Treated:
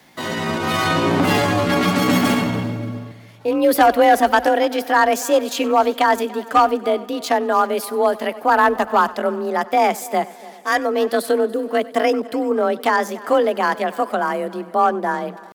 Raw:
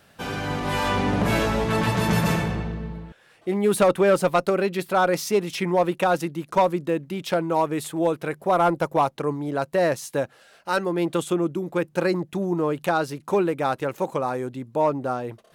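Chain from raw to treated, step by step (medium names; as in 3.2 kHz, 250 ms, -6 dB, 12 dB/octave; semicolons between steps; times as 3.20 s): frequency shift +33 Hz; pitch shift +3.5 st; multi-head delay 96 ms, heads first and third, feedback 54%, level -21 dB; trim +5 dB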